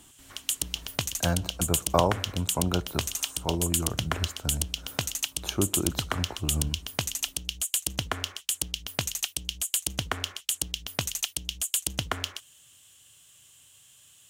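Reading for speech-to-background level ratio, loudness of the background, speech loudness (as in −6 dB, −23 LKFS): −1.5 dB, −30.0 LKFS, −31.5 LKFS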